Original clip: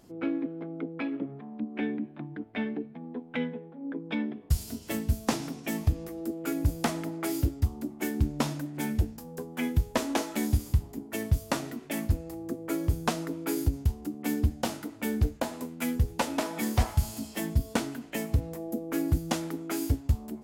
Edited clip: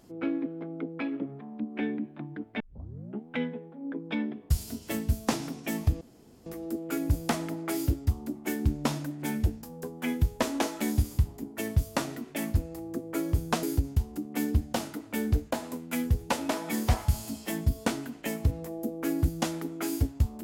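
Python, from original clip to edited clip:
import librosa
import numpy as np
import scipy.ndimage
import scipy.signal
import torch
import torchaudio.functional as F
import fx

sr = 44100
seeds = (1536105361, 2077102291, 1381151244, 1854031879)

y = fx.edit(x, sr, fx.tape_start(start_s=2.6, length_s=0.67),
    fx.insert_room_tone(at_s=6.01, length_s=0.45),
    fx.cut(start_s=13.18, length_s=0.34), tone=tone)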